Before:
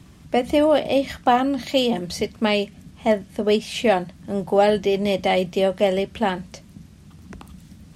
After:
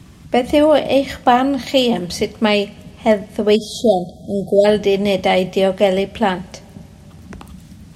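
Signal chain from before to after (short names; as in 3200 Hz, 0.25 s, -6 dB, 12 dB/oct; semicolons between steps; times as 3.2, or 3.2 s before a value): two-slope reverb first 0.56 s, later 5 s, from -20 dB, DRR 17.5 dB; spectral delete 3.56–4.65, 760–3200 Hz; gain +5 dB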